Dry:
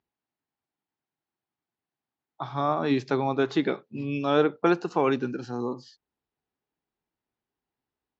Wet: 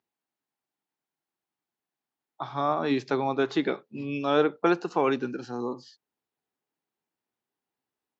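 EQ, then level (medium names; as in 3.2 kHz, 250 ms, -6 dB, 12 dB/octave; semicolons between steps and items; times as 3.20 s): high-pass 89 Hz; bass shelf 130 Hz -9 dB; 0.0 dB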